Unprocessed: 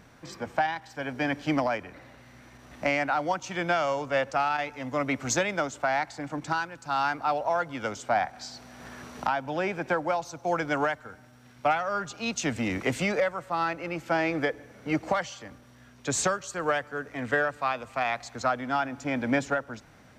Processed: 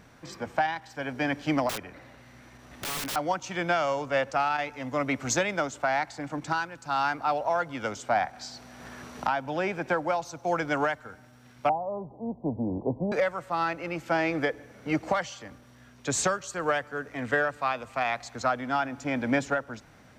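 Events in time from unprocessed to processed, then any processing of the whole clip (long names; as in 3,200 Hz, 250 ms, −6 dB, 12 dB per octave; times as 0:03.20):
0:01.69–0:03.16: wrap-around overflow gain 28 dB
0:11.69–0:13.12: Butterworth low-pass 1,000 Hz 96 dB per octave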